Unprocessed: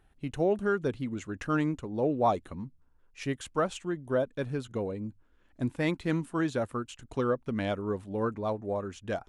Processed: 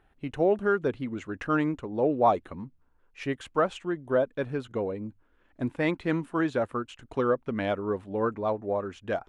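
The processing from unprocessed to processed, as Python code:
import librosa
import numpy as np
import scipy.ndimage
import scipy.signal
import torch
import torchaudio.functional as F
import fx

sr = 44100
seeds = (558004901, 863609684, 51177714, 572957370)

y = fx.bass_treble(x, sr, bass_db=-6, treble_db=-12)
y = y * 10.0 ** (4.0 / 20.0)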